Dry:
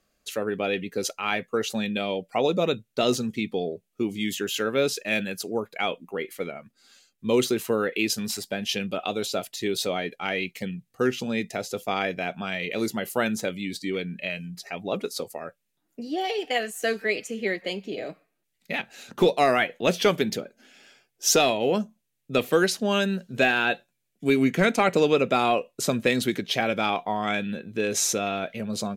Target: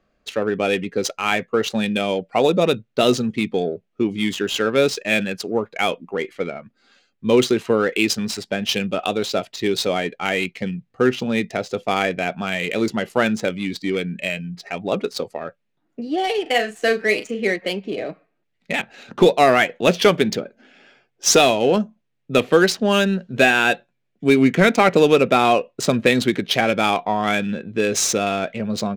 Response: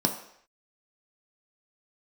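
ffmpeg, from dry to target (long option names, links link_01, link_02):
-filter_complex "[0:a]adynamicsmooth=sensitivity=5.5:basefreq=2800,asettb=1/sr,asplit=3[link_01][link_02][link_03];[link_01]atrim=end=16.424[link_04];[link_02]atrim=start=16.42:end=17.52,asetpts=PTS-STARTPTS,afade=type=in:duration=0.004:curve=qsin,afade=type=out:start_time=1.096:duration=0.004:curve=qsin,asplit=2[link_05][link_06];[link_06]adelay=38,volume=-9dB[link_07];[link_05][link_07]amix=inputs=2:normalize=0,atrim=end_sample=48510[link_08];[link_03]atrim=start=17.516[link_09];[link_04][link_08]acrossfade=duration=0.004:curve1=hsin:curve2=qsin[link_10];[link_10][link_09]acrossfade=duration=0.004:curve1=qsin:curve2=hsin,volume=6.5dB"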